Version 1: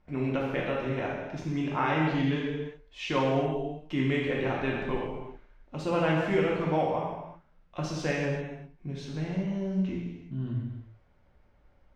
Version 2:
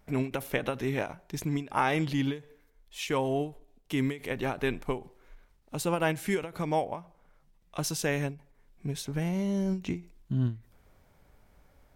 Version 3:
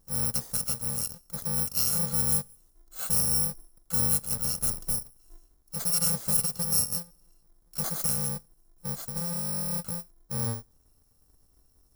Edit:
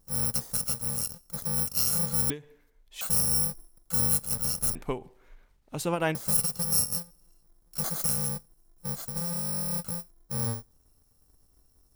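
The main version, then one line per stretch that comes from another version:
3
0:02.30–0:03.01: punch in from 2
0:04.75–0:06.15: punch in from 2
not used: 1

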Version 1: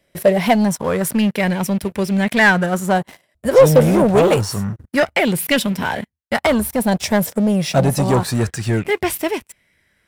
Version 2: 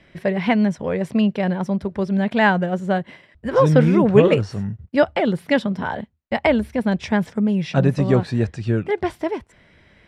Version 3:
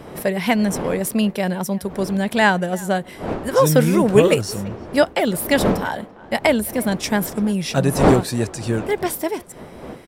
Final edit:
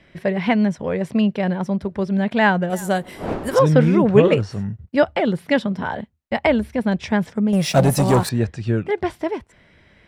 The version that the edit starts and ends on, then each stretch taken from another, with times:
2
0:02.70–0:03.59: punch in from 3
0:07.53–0:08.29: punch in from 1

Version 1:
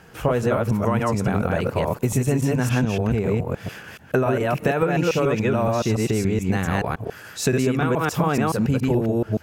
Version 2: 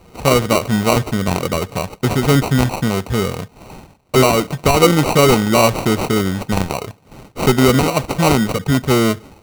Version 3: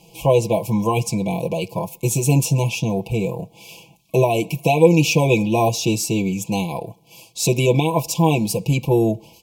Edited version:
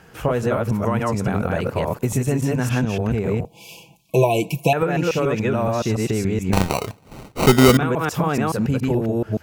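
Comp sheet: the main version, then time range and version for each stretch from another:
1
0:03.45–0:04.73: punch in from 3
0:06.53–0:07.77: punch in from 2

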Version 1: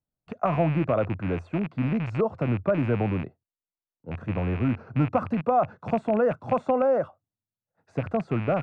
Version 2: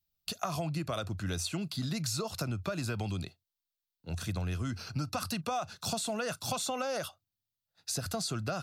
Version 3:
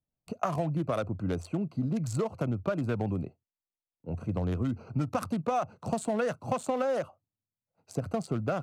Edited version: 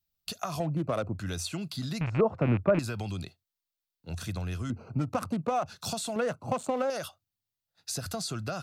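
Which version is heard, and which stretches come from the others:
2
0:00.60–0:01.19: punch in from 3
0:02.01–0:02.79: punch in from 1
0:04.70–0:05.66: punch in from 3
0:06.16–0:06.90: punch in from 3

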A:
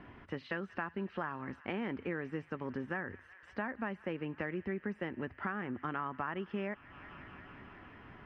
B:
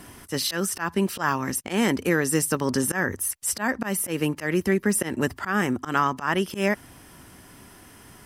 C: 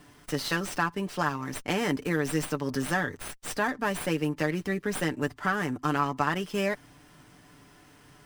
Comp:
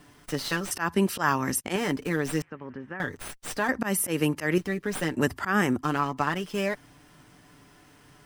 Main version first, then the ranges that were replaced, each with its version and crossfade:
C
0:00.71–0:01.76: punch in from B
0:02.42–0:03.00: punch in from A
0:03.69–0:04.58: punch in from B
0:05.16–0:05.81: punch in from B

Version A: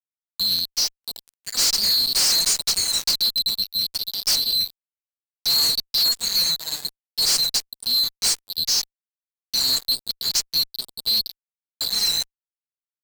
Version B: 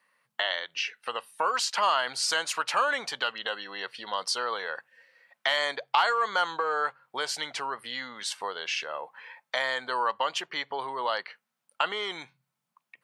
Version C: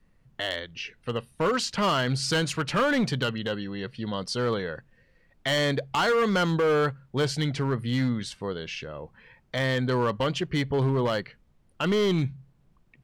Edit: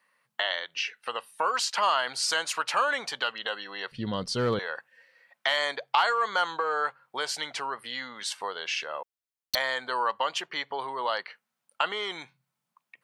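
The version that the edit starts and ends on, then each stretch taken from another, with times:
B
0:03.92–0:04.59: punch in from C
0:09.03–0:09.55: punch in from A

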